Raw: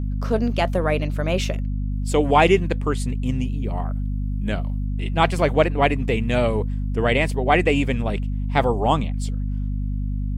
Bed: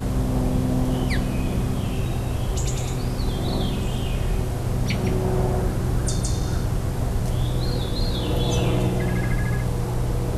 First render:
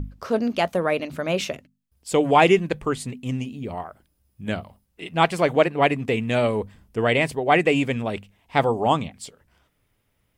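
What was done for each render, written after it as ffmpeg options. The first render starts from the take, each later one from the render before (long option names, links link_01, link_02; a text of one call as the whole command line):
ffmpeg -i in.wav -af "bandreject=frequency=50:width_type=h:width=6,bandreject=frequency=100:width_type=h:width=6,bandreject=frequency=150:width_type=h:width=6,bandreject=frequency=200:width_type=h:width=6,bandreject=frequency=250:width_type=h:width=6" out.wav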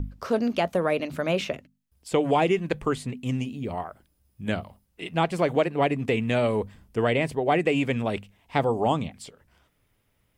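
ffmpeg -i in.wav -filter_complex "[0:a]acrossover=split=650|3500[link_01][link_02][link_03];[link_01]acompressor=threshold=-21dB:ratio=4[link_04];[link_02]acompressor=threshold=-27dB:ratio=4[link_05];[link_03]acompressor=threshold=-43dB:ratio=4[link_06];[link_04][link_05][link_06]amix=inputs=3:normalize=0" out.wav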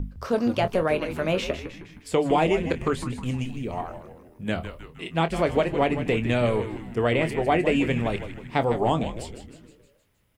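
ffmpeg -i in.wav -filter_complex "[0:a]asplit=2[link_01][link_02];[link_02]adelay=25,volume=-11dB[link_03];[link_01][link_03]amix=inputs=2:normalize=0,asplit=2[link_04][link_05];[link_05]asplit=6[link_06][link_07][link_08][link_09][link_10][link_11];[link_06]adelay=156,afreqshift=-120,volume=-10dB[link_12];[link_07]adelay=312,afreqshift=-240,volume=-15.4dB[link_13];[link_08]adelay=468,afreqshift=-360,volume=-20.7dB[link_14];[link_09]adelay=624,afreqshift=-480,volume=-26.1dB[link_15];[link_10]adelay=780,afreqshift=-600,volume=-31.4dB[link_16];[link_11]adelay=936,afreqshift=-720,volume=-36.8dB[link_17];[link_12][link_13][link_14][link_15][link_16][link_17]amix=inputs=6:normalize=0[link_18];[link_04][link_18]amix=inputs=2:normalize=0" out.wav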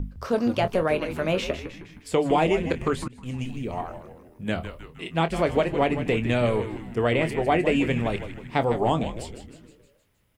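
ffmpeg -i in.wav -filter_complex "[0:a]asplit=2[link_01][link_02];[link_01]atrim=end=3.08,asetpts=PTS-STARTPTS,afade=type=out:start_time=3.076:duration=0.004:curve=hsin:silence=0.0668344[link_03];[link_02]atrim=start=3.08,asetpts=PTS-STARTPTS,afade=type=in:duration=0.41:silence=0.0668344[link_04];[link_03][link_04]concat=n=2:v=0:a=1" out.wav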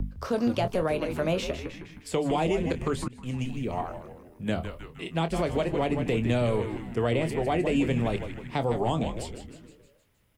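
ffmpeg -i in.wav -filter_complex "[0:a]acrossover=split=150|1300|3200[link_01][link_02][link_03][link_04];[link_02]alimiter=limit=-18.5dB:level=0:latency=1:release=99[link_05];[link_03]acompressor=threshold=-43dB:ratio=6[link_06];[link_01][link_05][link_06][link_04]amix=inputs=4:normalize=0" out.wav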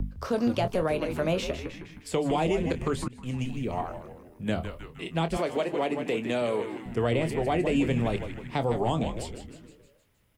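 ffmpeg -i in.wav -filter_complex "[0:a]asettb=1/sr,asplit=3[link_01][link_02][link_03];[link_01]atrim=end=5.374[link_04];[link_02]atrim=start=5.37:end=6.86,asetpts=PTS-STARTPTS,afade=type=in:duration=0.004:curve=qsin,afade=type=out:start_time=1.486:duration=0.004:curve=qsin,highpass=270[link_05];[link_03]atrim=start=6.856[link_06];[link_04][link_05]acrossfade=duration=0.004:curve1=hsin:curve2=qsin[link_07];[link_07][link_06]acrossfade=duration=0.004:curve1=qsin:curve2=hsin" out.wav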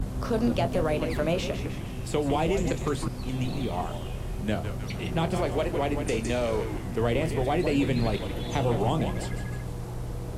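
ffmpeg -i in.wav -i bed.wav -filter_complex "[1:a]volume=-10.5dB[link_01];[0:a][link_01]amix=inputs=2:normalize=0" out.wav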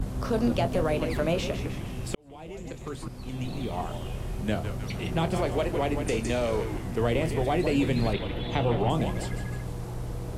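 ffmpeg -i in.wav -filter_complex "[0:a]asettb=1/sr,asplit=3[link_01][link_02][link_03];[link_01]atrim=end=8.134[link_04];[link_02]atrim=start=8.13:end=8.9,asetpts=PTS-STARTPTS,afade=type=in:duration=0.004:curve=qsin,afade=type=out:start_time=0.766:duration=0.004:curve=qsin,highshelf=frequency=4700:width_type=q:width=1.5:gain=-10.5[link_05];[link_03]atrim=start=8.896[link_06];[link_04][link_05]acrossfade=duration=0.004:curve1=hsin:curve2=qsin[link_07];[link_07][link_06]acrossfade=duration=0.004:curve1=qsin:curve2=hsin,asplit=2[link_08][link_09];[link_08]atrim=end=2.15,asetpts=PTS-STARTPTS,afade=type=out:start_time=2.146:duration=0.004:curve=hsin[link_10];[link_09]atrim=start=2.15,asetpts=PTS-STARTPTS,afade=type=in:duration=1.97[link_11];[link_10][link_11]concat=n=2:v=0:a=1" out.wav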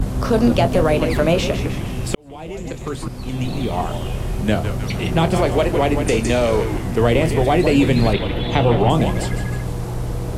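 ffmpeg -i in.wav -af "volume=10dB" out.wav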